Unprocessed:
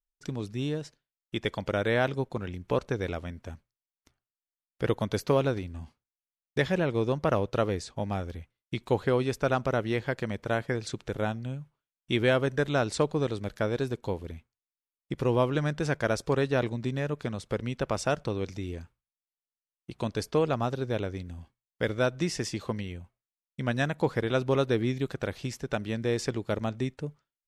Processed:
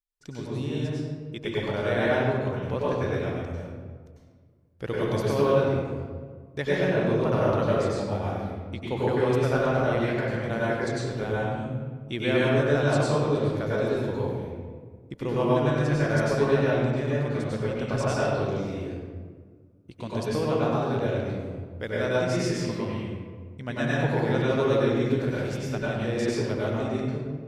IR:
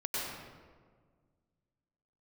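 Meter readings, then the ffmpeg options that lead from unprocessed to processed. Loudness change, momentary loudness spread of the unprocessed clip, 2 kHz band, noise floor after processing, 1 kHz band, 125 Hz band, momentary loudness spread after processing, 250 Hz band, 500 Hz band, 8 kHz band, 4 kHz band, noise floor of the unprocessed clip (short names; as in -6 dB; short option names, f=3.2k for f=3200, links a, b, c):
+3.5 dB, 12 LU, +3.0 dB, -51 dBFS, +3.0 dB, +4.5 dB, 13 LU, +4.0 dB, +4.0 dB, 0.0 dB, +1.0 dB, under -85 dBFS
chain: -filter_complex "[1:a]atrim=start_sample=2205[a];[0:a][a]afir=irnorm=-1:irlink=0,volume=-2.5dB"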